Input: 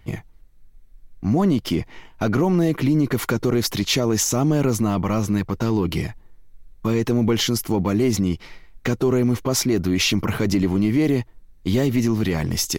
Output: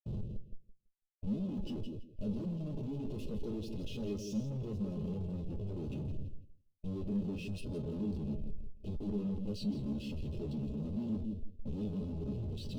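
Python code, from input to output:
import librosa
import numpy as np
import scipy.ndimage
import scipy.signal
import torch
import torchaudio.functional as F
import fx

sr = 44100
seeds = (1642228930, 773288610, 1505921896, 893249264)

y = fx.pitch_glide(x, sr, semitones=-5.5, runs='starting unshifted')
y = fx.rotary(y, sr, hz=8.0)
y = fx.schmitt(y, sr, flips_db=-39.5)
y = fx.brickwall_bandstop(y, sr, low_hz=620.0, high_hz=2500.0)
y = fx.high_shelf(y, sr, hz=4000.0, db=-11.5)
y = fx.echo_feedback(y, sr, ms=165, feedback_pct=27, wet_db=-5.5)
y = 10.0 ** (-27.5 / 20.0) * np.tanh(y / 10.0 ** (-27.5 / 20.0))
y = fx.comb_fb(y, sr, f0_hz=210.0, decay_s=0.17, harmonics='all', damping=0.0, mix_pct=70)
y = fx.spectral_expand(y, sr, expansion=1.5)
y = F.gain(torch.from_numpy(y), 2.0).numpy()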